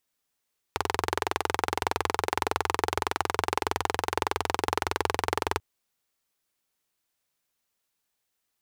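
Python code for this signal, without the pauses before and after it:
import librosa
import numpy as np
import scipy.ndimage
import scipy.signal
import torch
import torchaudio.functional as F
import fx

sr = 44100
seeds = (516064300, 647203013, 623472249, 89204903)

y = fx.engine_single(sr, seeds[0], length_s=4.84, rpm=2600, resonances_hz=(87.0, 420.0, 840.0))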